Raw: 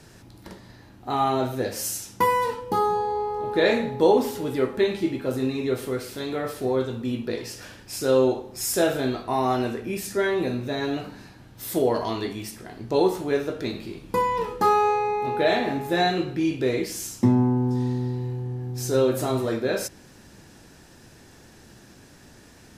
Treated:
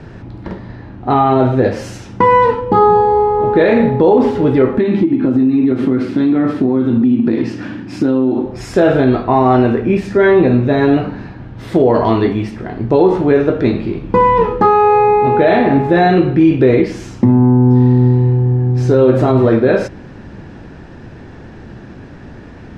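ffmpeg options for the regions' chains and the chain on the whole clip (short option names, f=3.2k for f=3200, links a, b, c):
-filter_complex "[0:a]asettb=1/sr,asplit=3[a][b][c];[a]atrim=end=4.784[d];[b]atrim=start=4.78:end=8.46,asetpts=PTS-STARTPTS,afade=t=in:d=0.004:c=qsin,afade=t=out:st=3.676:d=0.004:c=qsin,highpass=180,lowshelf=f=370:t=q:w=3:g=6.5,acompressor=threshold=-25dB:ratio=12:attack=3.2:release=140:knee=1:detection=peak[e];[c]atrim=start=8.456[f];[d][e]acrossfade=d=0.004:c1=hsin:c2=qsin[g];[g][f]acrossfade=d=0.004:c1=qsin:c2=hsin,lowpass=2.2k,lowshelf=f=390:g=5.5,alimiter=level_in=14dB:limit=-1dB:release=50:level=0:latency=1,volume=-1dB"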